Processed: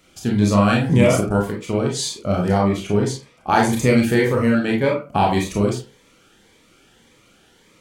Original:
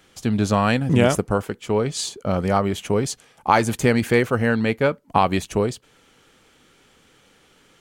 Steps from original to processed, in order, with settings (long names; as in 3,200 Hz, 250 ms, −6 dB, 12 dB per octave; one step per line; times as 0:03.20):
0:02.58–0:03.49: high-shelf EQ 6,200 Hz −9 dB
convolution reverb RT60 0.35 s, pre-delay 27 ms, DRR −1 dB
phaser whose notches keep moving one way rising 1.8 Hz